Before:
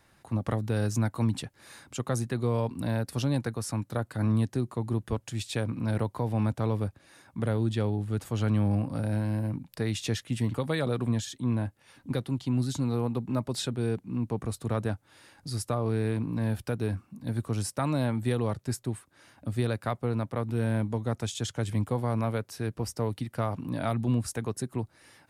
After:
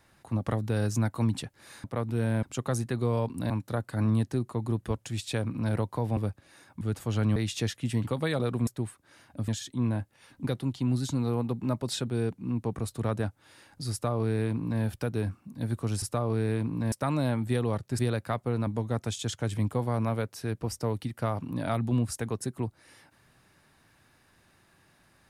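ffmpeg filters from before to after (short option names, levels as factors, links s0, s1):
-filter_complex "[0:a]asplit=13[s0][s1][s2][s3][s4][s5][s6][s7][s8][s9][s10][s11][s12];[s0]atrim=end=1.842[s13];[s1]atrim=start=20.238:end=20.832[s14];[s2]atrim=start=1.838:end=2.912[s15];[s3]atrim=start=3.718:end=6.392[s16];[s4]atrim=start=6.748:end=7.392[s17];[s5]atrim=start=8.058:end=8.612[s18];[s6]atrim=start=9.828:end=11.142[s19];[s7]atrim=start=18.748:end=19.562[s20];[s8]atrim=start=11.138:end=17.682[s21];[s9]atrim=start=15.578:end=16.482[s22];[s10]atrim=start=17.678:end=18.752[s23];[s11]atrim=start=19.558:end=20.242[s24];[s12]atrim=start=20.828[s25];[s13][s14]acrossfade=d=0.004:c1=hsin:c2=hsin[s26];[s26][s15]acrossfade=d=0.004:c1=hsin:c2=hsin[s27];[s27][s16]acrossfade=d=0.004:c1=hsin:c2=hsin[s28];[s28][s17]acrossfade=d=0.004:c1=hsin:c2=hsin[s29];[s29][s18]acrossfade=d=0.004:c1=hsin:c2=hsin[s30];[s30][s19]acrossfade=d=0.004:c1=hsin:c2=hsin[s31];[s31][s20]acrossfade=d=0.004:c1=hsin:c2=hsin[s32];[s32][s21]acrossfade=d=0.004:c1=hsin:c2=hsin[s33];[s33][s22]acrossfade=d=0.004:c1=hsin:c2=hsin[s34];[s34][s23]acrossfade=d=0.004:c1=hsin:c2=hsin[s35];[s35][s24]acrossfade=d=0.004:c1=hsin:c2=hsin[s36];[s36][s25]acrossfade=d=0.004:c1=hsin:c2=hsin"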